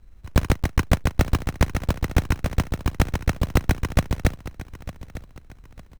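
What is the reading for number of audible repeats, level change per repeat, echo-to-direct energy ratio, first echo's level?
3, -9.5 dB, -15.0 dB, -15.5 dB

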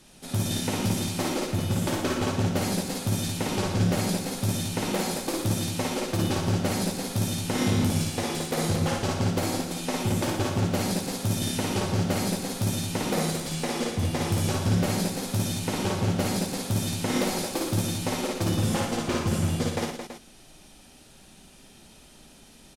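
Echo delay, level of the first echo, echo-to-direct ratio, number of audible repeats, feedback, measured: 56 ms, -3.0 dB, 0.0 dB, 4, no steady repeat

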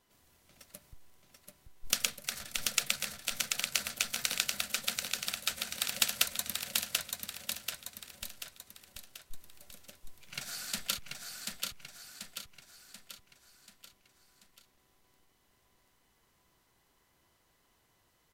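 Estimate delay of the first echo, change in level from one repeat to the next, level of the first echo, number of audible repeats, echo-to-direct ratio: 0.736 s, -6.0 dB, -3.5 dB, 5, -2.5 dB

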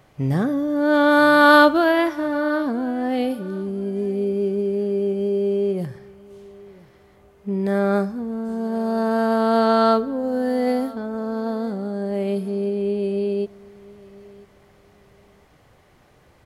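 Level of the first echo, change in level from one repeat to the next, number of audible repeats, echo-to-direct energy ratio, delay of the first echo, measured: -22.0 dB, -12.5 dB, 2, -22.0 dB, 0.995 s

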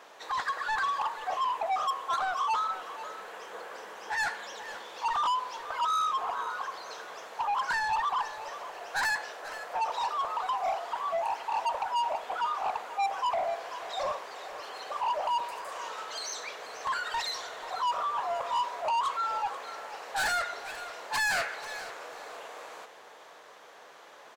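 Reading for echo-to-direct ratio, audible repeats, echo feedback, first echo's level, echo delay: -14.0 dB, 2, 21%, -14.0 dB, 0.486 s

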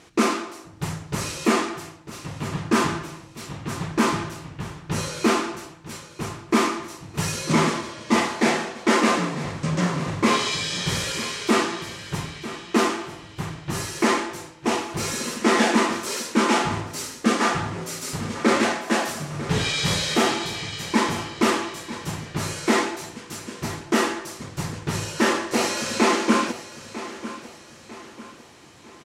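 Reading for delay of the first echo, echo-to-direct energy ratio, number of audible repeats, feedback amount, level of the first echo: 0.948 s, -13.5 dB, 3, 42%, -14.5 dB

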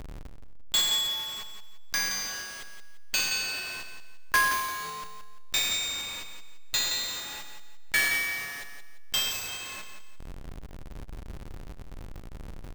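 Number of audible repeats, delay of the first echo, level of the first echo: 3, 0.172 s, -8.0 dB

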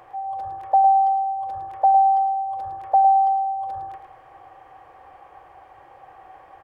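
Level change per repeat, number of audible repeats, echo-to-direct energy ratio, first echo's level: -13.5 dB, 2, -9.0 dB, -9.0 dB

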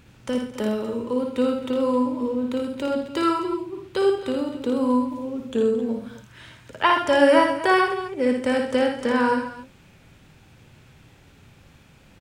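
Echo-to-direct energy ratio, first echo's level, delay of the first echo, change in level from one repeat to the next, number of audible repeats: -2.5 dB, -5.0 dB, 56 ms, no steady repeat, 4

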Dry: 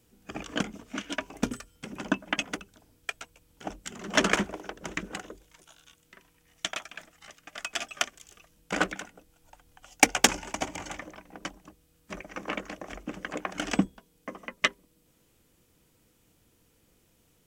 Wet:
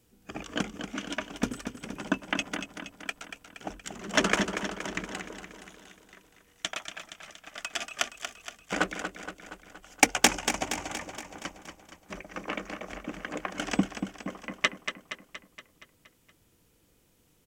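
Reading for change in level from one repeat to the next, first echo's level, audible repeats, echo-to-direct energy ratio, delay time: -4.5 dB, -8.5 dB, 6, -6.5 dB, 0.235 s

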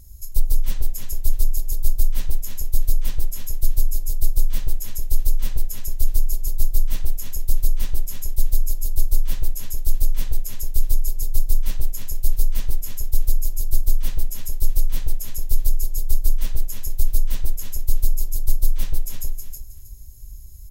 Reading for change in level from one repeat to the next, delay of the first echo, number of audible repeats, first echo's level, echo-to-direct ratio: -13.0 dB, 0.317 s, 3, -4.5 dB, -4.5 dB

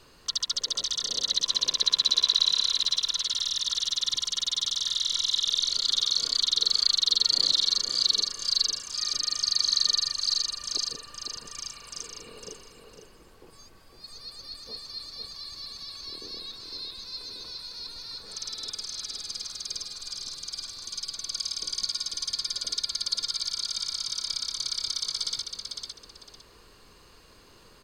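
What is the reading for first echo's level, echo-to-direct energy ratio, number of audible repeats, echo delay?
-6.0 dB, -6.0 dB, 2, 0.505 s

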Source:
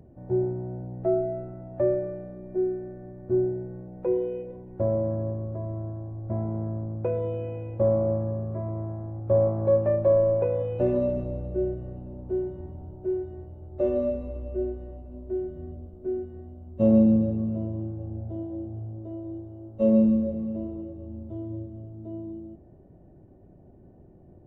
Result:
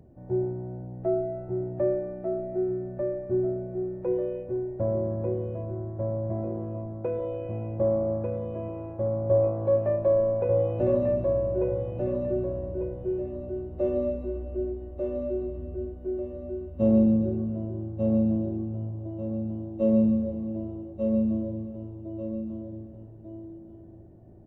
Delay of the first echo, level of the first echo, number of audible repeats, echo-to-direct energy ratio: 1.194 s, -4.0 dB, 2, -3.5 dB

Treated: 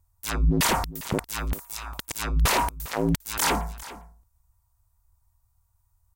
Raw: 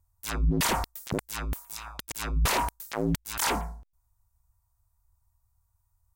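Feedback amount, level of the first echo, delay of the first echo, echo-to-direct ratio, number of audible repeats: no steady repeat, -17.0 dB, 0.402 s, -17.0 dB, 1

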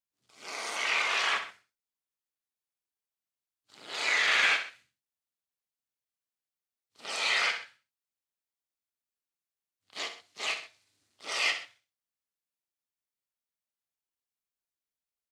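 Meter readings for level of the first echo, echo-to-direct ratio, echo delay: -10.0 dB, -9.5 dB, 64 ms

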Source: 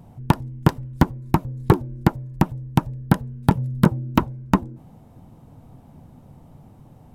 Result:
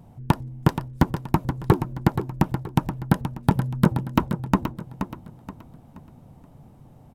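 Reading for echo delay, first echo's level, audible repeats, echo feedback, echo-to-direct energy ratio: 0.476 s, -9.0 dB, 3, 34%, -8.5 dB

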